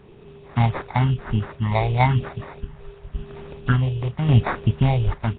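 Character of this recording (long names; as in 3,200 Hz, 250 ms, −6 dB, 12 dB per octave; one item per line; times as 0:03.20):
sample-and-hold tremolo 3.5 Hz
phaser sweep stages 4, 0.94 Hz, lowest notch 230–1,900 Hz
aliases and images of a low sample rate 3,000 Hz, jitter 0%
Nellymoser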